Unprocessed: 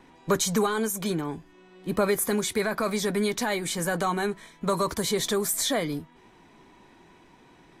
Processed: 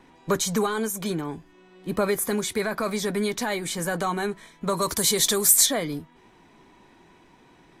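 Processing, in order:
0:04.81–0:05.65: high-shelf EQ 4,100 Hz → 2,800 Hz +12 dB

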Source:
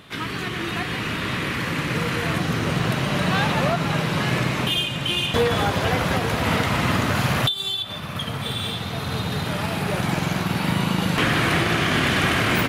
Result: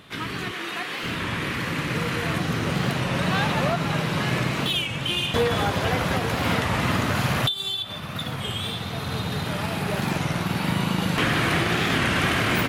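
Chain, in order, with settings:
0:00.51–0:01.04: Bessel high-pass filter 410 Hz, order 2
wow of a warped record 33 1/3 rpm, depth 160 cents
level −2 dB

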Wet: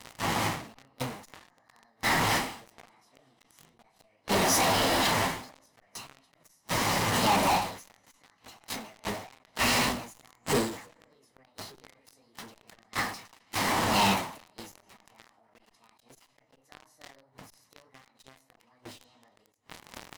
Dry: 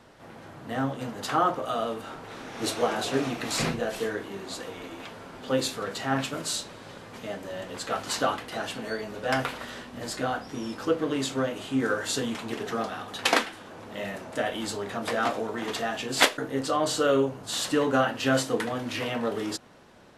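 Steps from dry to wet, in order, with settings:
gate with flip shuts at −22 dBFS, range −30 dB
on a send at −18.5 dB: convolution reverb RT60 1.5 s, pre-delay 6 ms
on the sum: formants moved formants +6 semitones
comb filter 1 ms, depth 36%
flanger 1.6 Hz, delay 2.7 ms, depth 9.7 ms, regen −46%
in parallel at −10 dB: fuzz pedal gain 56 dB, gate −51 dBFS
on the sum: every ending faded ahead of time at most 100 dB per second

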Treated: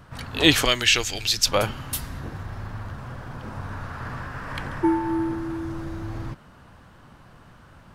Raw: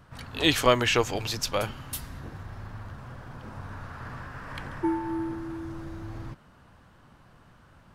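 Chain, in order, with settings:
0:00.65–0:01.46: octave-band graphic EQ 125/250/500/1,000/4,000/8,000 Hz −9/−7/−9/−12/+5/+3 dB
level +6 dB

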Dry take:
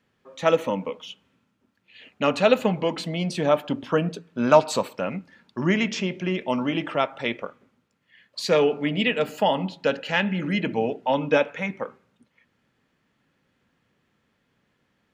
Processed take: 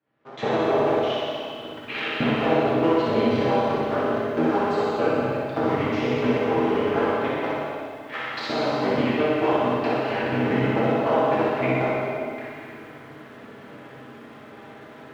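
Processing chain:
sub-harmonics by changed cycles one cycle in 3, inverted
camcorder AGC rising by 32 dB per second
high-pass filter 100 Hz 24 dB per octave
low-shelf EQ 280 Hz −6.5 dB
brickwall limiter −11.5 dBFS, peak gain reduction 8.5 dB
transient designer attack +7 dB, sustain −9 dB
head-to-tape spacing loss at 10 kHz 36 dB
notch comb filter 180 Hz
flutter between parallel walls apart 10.5 metres, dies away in 0.86 s
dense smooth reverb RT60 2.1 s, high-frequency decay 0.95×, DRR −7 dB
feedback echo at a low word length 243 ms, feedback 35%, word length 7 bits, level −14 dB
level −6.5 dB

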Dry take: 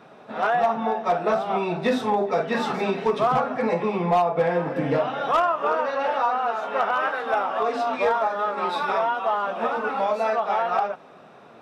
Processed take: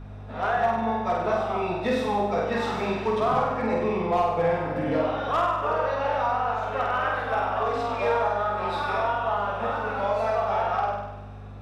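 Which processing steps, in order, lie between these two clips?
mains hum 50 Hz, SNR 11 dB
flutter between parallel walls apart 8.4 metres, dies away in 0.96 s
level −5 dB

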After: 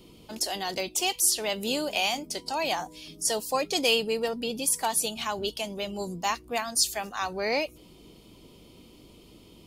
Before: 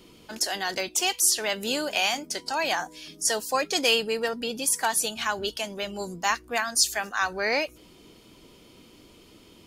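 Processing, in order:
mains hum 50 Hz, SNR 34 dB
graphic EQ with 15 bands 160 Hz +3 dB, 1,600 Hz −11 dB, 6,300 Hz −4 dB

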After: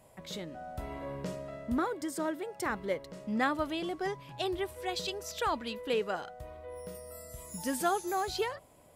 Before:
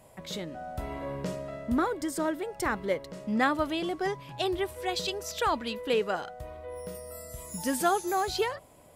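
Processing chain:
0:01.79–0:02.70: high-pass filter 110 Hz 12 dB per octave
level −4 dB

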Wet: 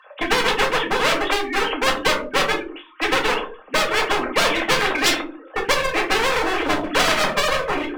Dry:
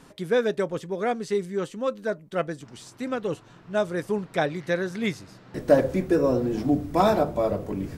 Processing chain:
three sine waves on the formant tracks
high-pass filter 370 Hz 24 dB per octave
noise gate −44 dBFS, range −17 dB
downward compressor 6 to 1, threshold −24 dBFS, peak gain reduction 14 dB
asymmetric clip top −39.5 dBFS
convolution reverb, pre-delay 4 ms, DRR −0.5 dB
every bin compressed towards the loudest bin 4 to 1
level +6.5 dB

